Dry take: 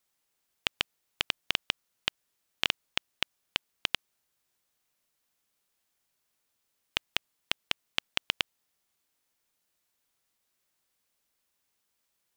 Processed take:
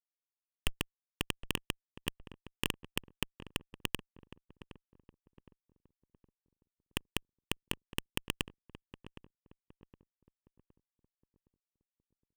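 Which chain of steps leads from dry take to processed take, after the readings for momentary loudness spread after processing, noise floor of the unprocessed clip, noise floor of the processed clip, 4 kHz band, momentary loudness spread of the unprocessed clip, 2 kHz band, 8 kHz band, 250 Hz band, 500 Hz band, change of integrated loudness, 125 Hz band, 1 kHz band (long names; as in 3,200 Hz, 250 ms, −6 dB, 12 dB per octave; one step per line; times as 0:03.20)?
20 LU, −79 dBFS, below −85 dBFS, −8.5 dB, 5 LU, −7.0 dB, +1.0 dB, +7.5 dB, +1.0 dB, −6.0 dB, +9.5 dB, −5.0 dB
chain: comparator with hysteresis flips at −32.5 dBFS
feedback echo with a low-pass in the loop 765 ms, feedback 42%, low-pass 1,100 Hz, level −13 dB
level +18 dB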